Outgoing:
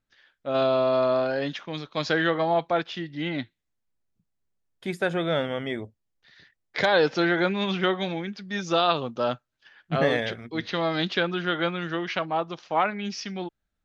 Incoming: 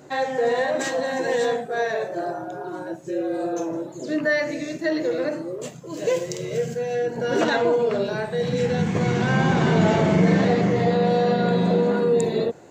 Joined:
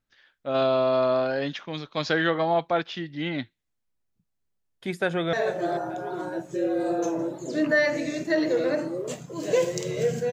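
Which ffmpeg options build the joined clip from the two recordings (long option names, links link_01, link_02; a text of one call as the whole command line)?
ffmpeg -i cue0.wav -i cue1.wav -filter_complex "[0:a]apad=whole_dur=10.32,atrim=end=10.32,atrim=end=5.332[link_01];[1:a]atrim=start=1.868:end=6.86[link_02];[link_01][link_02]acrossfade=duration=0.004:curve1=hsin:curve2=hsin,asplit=2[link_03][link_04];[link_04]afade=type=in:start_time=4.99:duration=0.01,afade=type=out:start_time=5.33:duration=0.01,aecho=0:1:440|880|1320|1760:0.199526|0.0798105|0.0319242|0.0127697[link_05];[link_03][link_05]amix=inputs=2:normalize=0" out.wav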